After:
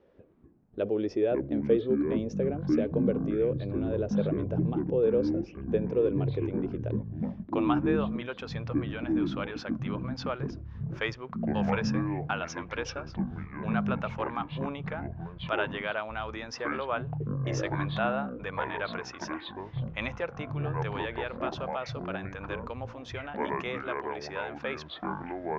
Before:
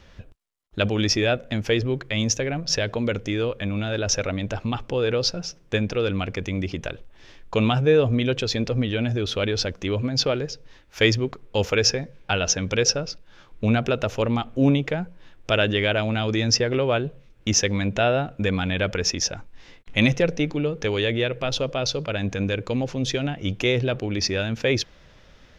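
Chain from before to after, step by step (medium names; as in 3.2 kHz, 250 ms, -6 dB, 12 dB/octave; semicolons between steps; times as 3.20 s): band-pass sweep 420 Hz -> 1.1 kHz, 7.05–7.74 s; ever faster or slower copies 152 ms, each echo -7 st, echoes 3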